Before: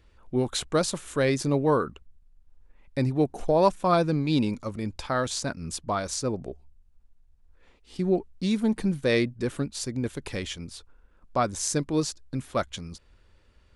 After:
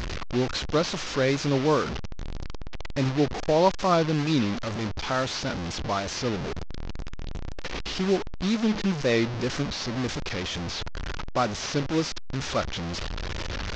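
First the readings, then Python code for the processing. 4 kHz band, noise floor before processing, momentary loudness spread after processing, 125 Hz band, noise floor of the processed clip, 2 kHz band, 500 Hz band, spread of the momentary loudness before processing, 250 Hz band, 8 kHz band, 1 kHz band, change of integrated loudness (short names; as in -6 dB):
+5.0 dB, -60 dBFS, 14 LU, +1.0 dB, -33 dBFS, +4.0 dB, 0.0 dB, 12 LU, +0.5 dB, -3.0 dB, +1.0 dB, 0.0 dB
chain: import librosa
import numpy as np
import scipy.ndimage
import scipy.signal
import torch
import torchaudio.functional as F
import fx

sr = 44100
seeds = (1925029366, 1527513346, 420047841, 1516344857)

y = fx.delta_mod(x, sr, bps=32000, step_db=-25.0)
y = fx.wow_flutter(y, sr, seeds[0], rate_hz=2.1, depth_cents=61.0)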